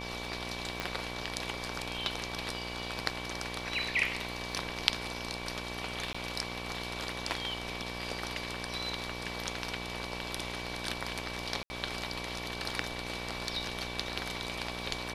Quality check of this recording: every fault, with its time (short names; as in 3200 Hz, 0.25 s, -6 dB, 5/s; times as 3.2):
buzz 60 Hz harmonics 19 -42 dBFS
crackle 16/s -45 dBFS
tone 2300 Hz -44 dBFS
0.8 pop -18 dBFS
6.13–6.14 gap 15 ms
11.63–11.7 gap 70 ms